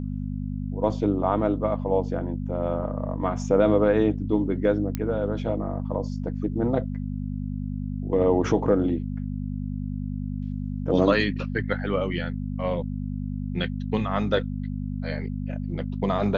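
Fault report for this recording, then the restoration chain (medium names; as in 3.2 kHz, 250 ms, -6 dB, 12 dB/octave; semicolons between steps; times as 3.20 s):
hum 50 Hz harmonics 5 -30 dBFS
4.95 s: pop -14 dBFS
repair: de-click; de-hum 50 Hz, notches 5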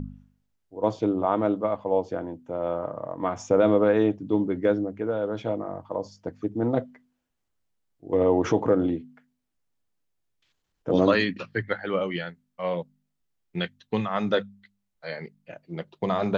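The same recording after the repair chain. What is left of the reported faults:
nothing left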